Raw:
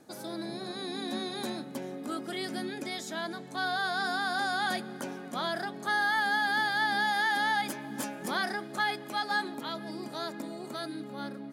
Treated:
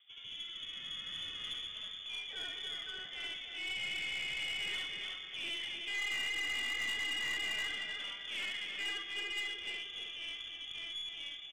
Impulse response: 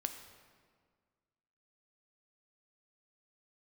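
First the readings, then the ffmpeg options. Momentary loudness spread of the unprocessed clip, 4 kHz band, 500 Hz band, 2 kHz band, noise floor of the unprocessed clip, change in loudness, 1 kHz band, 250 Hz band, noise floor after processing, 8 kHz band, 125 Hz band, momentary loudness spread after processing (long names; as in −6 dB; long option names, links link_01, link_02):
12 LU, +1.5 dB, −19.0 dB, −7.5 dB, −43 dBFS, −5.5 dB, −24.0 dB, −22.5 dB, −48 dBFS, −4.5 dB, −15.5 dB, 8 LU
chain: -filter_complex "[0:a]lowpass=frequency=3100:width_type=q:width=0.5098,lowpass=frequency=3100:width_type=q:width=0.6013,lowpass=frequency=3100:width_type=q:width=0.9,lowpass=frequency=3100:width_type=q:width=2.563,afreqshift=-3700,asplit=2[link_01][link_02];[link_02]adelay=307,lowpass=frequency=2800:poles=1,volume=-5dB,asplit=2[link_03][link_04];[link_04]adelay=307,lowpass=frequency=2800:poles=1,volume=0.32,asplit=2[link_05][link_06];[link_06]adelay=307,lowpass=frequency=2800:poles=1,volume=0.32,asplit=2[link_07][link_08];[link_08]adelay=307,lowpass=frequency=2800:poles=1,volume=0.32[link_09];[link_01][link_03][link_05][link_07][link_09]amix=inputs=5:normalize=0,asplit=2[link_10][link_11];[1:a]atrim=start_sample=2205,adelay=70[link_12];[link_11][link_12]afir=irnorm=-1:irlink=0,volume=1.5dB[link_13];[link_10][link_13]amix=inputs=2:normalize=0,aeval=exprs='(tanh(15.8*val(0)+0.25)-tanh(0.25))/15.8':channel_layout=same,volume=-8.5dB"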